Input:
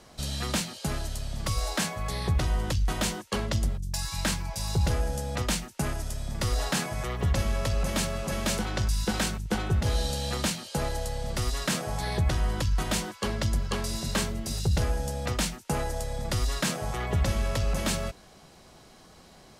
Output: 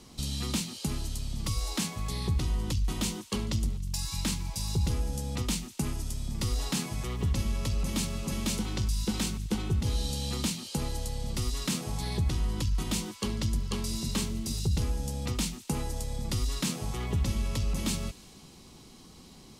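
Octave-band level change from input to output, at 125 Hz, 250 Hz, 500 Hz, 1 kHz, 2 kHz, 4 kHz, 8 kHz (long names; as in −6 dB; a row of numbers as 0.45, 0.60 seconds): −2.0, 0.0, −7.5, −8.0, −8.0, −2.5, −2.0 decibels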